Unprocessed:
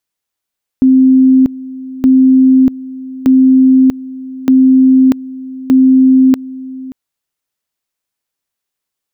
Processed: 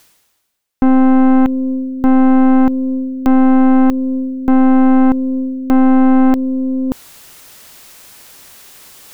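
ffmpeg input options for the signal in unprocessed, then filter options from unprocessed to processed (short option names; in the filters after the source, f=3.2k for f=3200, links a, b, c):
-f lavfi -i "aevalsrc='pow(10,(-3.5-19*gte(mod(t,1.22),0.64))/20)*sin(2*PI*261*t)':d=6.1:s=44100"
-af "areverse,acompressor=mode=upward:threshold=-13dB:ratio=2.5,areverse,aeval=exprs='(tanh(4.47*val(0)+0.75)-tanh(0.75))/4.47':c=same,acontrast=71"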